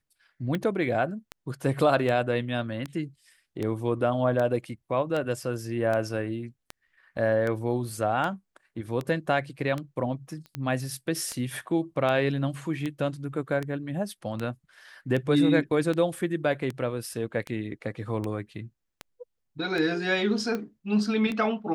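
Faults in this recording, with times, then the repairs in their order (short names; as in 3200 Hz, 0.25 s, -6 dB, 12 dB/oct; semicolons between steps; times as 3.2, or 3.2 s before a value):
tick 78 rpm -18 dBFS
10.46 pop -31 dBFS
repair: de-click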